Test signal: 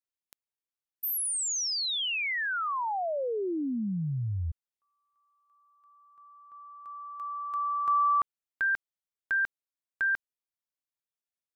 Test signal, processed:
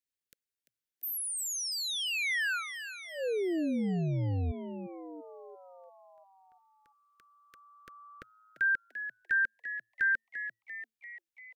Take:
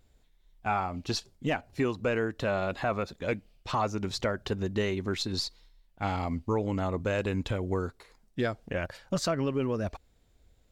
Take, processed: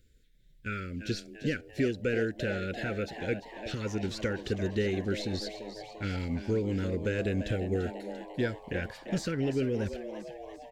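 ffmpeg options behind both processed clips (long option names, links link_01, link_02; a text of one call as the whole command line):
ffmpeg -i in.wav -filter_complex "[0:a]acrossover=split=1900[link_01][link_02];[link_02]alimiter=level_in=8.5dB:limit=-24dB:level=0:latency=1:release=17,volume=-8.5dB[link_03];[link_01][link_03]amix=inputs=2:normalize=0,asuperstop=centerf=870:order=12:qfactor=0.99,asplit=8[link_04][link_05][link_06][link_07][link_08][link_09][link_10][link_11];[link_05]adelay=343,afreqshift=110,volume=-11dB[link_12];[link_06]adelay=686,afreqshift=220,volume=-15.4dB[link_13];[link_07]adelay=1029,afreqshift=330,volume=-19.9dB[link_14];[link_08]adelay=1372,afreqshift=440,volume=-24.3dB[link_15];[link_09]adelay=1715,afreqshift=550,volume=-28.7dB[link_16];[link_10]adelay=2058,afreqshift=660,volume=-33.2dB[link_17];[link_11]adelay=2401,afreqshift=770,volume=-37.6dB[link_18];[link_04][link_12][link_13][link_14][link_15][link_16][link_17][link_18]amix=inputs=8:normalize=0" out.wav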